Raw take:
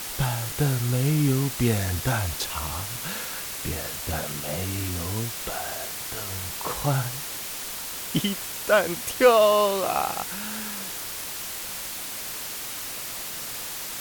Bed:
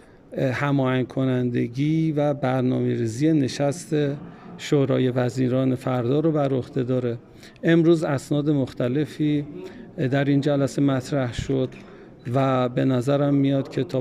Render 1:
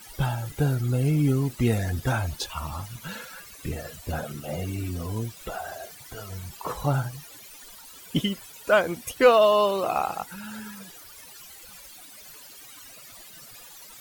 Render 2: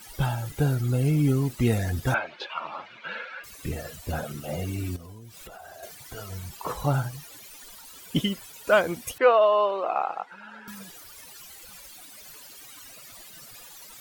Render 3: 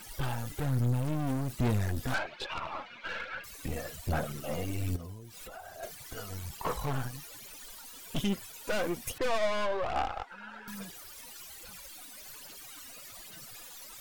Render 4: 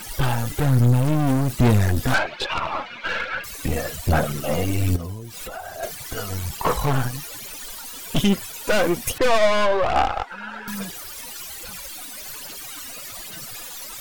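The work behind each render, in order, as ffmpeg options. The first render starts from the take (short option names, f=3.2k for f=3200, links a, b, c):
-af "afftdn=nr=17:nf=-34"
-filter_complex "[0:a]asettb=1/sr,asplit=3[a][b][c];[a]atrim=end=2.144[d];[b]atrim=start=2.14:end=3.44,asetpts=PTS-STARTPTS,afade=t=in:d=0.004:c=qsin,afade=t=out:st=1.296:d=0.004:c=qsin,highpass=f=260:w=0.5412,highpass=f=260:w=1.3066,equalizer=f=260:t=q:w=4:g=-7,equalizer=f=570:t=q:w=4:g=5,equalizer=f=1.5k:t=q:w=4:g=6,equalizer=f=2.3k:t=q:w=4:g=8,lowpass=f=3.6k:w=0.5412,lowpass=f=3.6k:w=1.3066[e];[c]atrim=start=3.436[f];[d][e]acrossfade=d=0.004:c1=hsin:c2=qsin[g];[g][f]acrossfade=d=0.004:c1=qsin:c2=hsin,asettb=1/sr,asplit=3[h][i][j];[h]atrim=end=4.964[k];[i]atrim=start=4.96:end=5.83,asetpts=PTS-STARTPTS,afade=t=in:d=0.004:c=qsin,afade=t=out:st=0.866:d=0.004:c=qsin,acompressor=threshold=-40dB:ratio=16:attack=3.2:release=140:knee=1:detection=peak[l];[j]atrim=start=5.826[m];[k][l]acrossfade=d=0.004:c1=hsin:c2=qsin[n];[n][m]acrossfade=d=0.004:c1=qsin:c2=hsin,asettb=1/sr,asplit=3[o][p][q];[o]atrim=end=9.184[r];[p]atrim=start=9.18:end=10.68,asetpts=PTS-STARTPTS,afade=t=in:d=0.004:c=qsin,afade=t=out:st=1.496:d=0.004:c=qsin,highpass=460,lowpass=2.1k[s];[q]atrim=start=10.676[t];[r][s]acrossfade=d=0.004:c1=hsin:c2=qsin[u];[u][t]acrossfade=d=0.004:c1=qsin:c2=hsin"
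-af "aeval=exprs='(tanh(28.2*val(0)+0.55)-tanh(0.55))/28.2':c=same,aphaser=in_gain=1:out_gain=1:delay=4.2:decay=0.39:speed=1.2:type=sinusoidal"
-af "volume=12dB"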